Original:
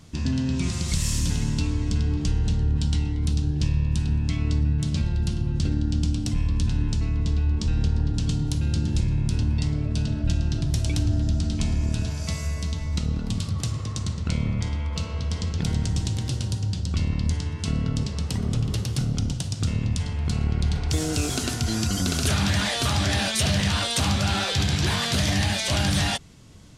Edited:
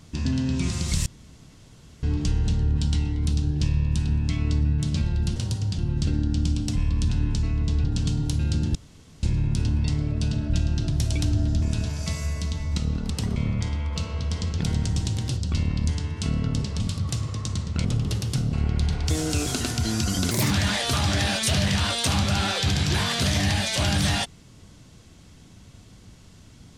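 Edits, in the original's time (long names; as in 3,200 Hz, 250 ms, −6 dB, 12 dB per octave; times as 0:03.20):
0:01.06–0:02.03: fill with room tone
0:07.42–0:08.06: remove
0:08.97: splice in room tone 0.48 s
0:11.36–0:11.83: remove
0:13.31–0:14.36: swap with 0:18.22–0:18.48
0:16.37–0:16.79: move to 0:05.36
0:19.16–0:20.36: remove
0:22.14–0:22.43: play speed 147%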